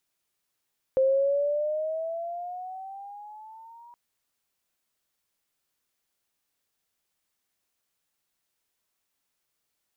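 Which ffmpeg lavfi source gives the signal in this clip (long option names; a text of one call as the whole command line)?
ffmpeg -f lavfi -i "aevalsrc='pow(10,(-18-29*t/2.97)/20)*sin(2*PI*524*2.97/(10.5*log(2)/12)*(exp(10.5*log(2)/12*t/2.97)-1))':duration=2.97:sample_rate=44100" out.wav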